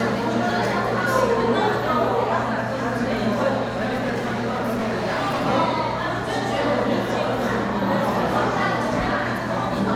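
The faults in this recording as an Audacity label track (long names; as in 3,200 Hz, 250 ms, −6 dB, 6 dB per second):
3.630000	5.470000	clipping −20 dBFS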